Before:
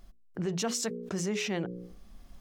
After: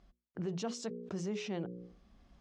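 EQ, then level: HPF 46 Hz; dynamic EQ 1900 Hz, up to -7 dB, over -52 dBFS, Q 1.4; air absorption 110 m; -5.0 dB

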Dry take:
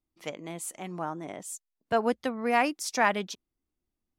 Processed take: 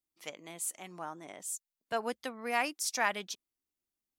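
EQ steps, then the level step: tilt +2.5 dB/oct; -6.5 dB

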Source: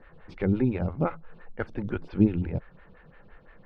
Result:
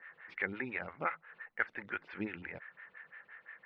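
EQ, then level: band-pass 1900 Hz, Q 3.9; +10.5 dB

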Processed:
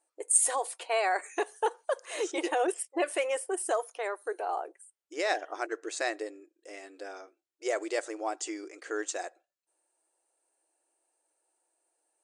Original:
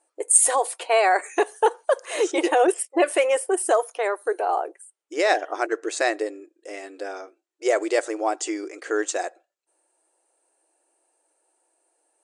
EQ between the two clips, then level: tone controls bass +9 dB, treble +4 dB; low shelf 460 Hz -7 dB; high shelf 8200 Hz -7 dB; -7.5 dB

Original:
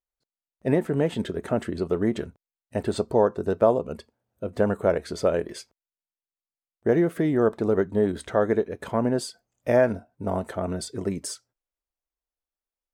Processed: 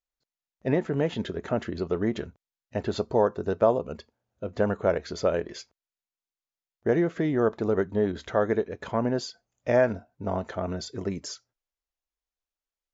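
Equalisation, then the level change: brick-wall FIR low-pass 7400 Hz; bell 280 Hz -3 dB 2.8 oct; 0.0 dB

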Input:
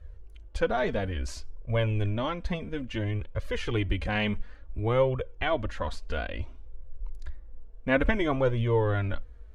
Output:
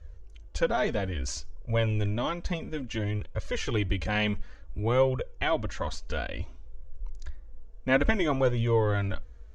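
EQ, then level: synth low-pass 6500 Hz, resonance Q 3; 0.0 dB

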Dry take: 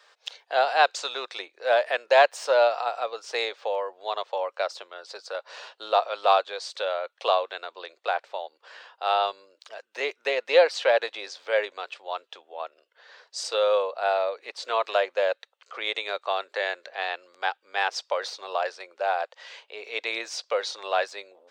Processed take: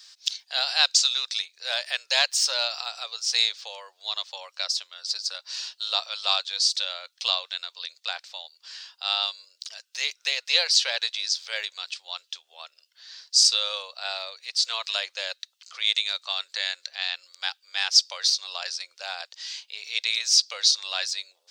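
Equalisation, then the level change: HPF 560 Hz 6 dB/oct; differentiator; bell 5000 Hz +13.5 dB 1.2 oct; +7.0 dB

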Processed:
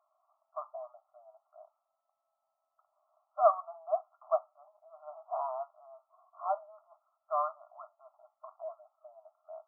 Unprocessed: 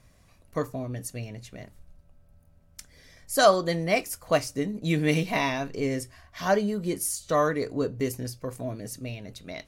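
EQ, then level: brick-wall FIR band-pass 600–1400 Hz; notch 950 Hz, Q 18; -4.0 dB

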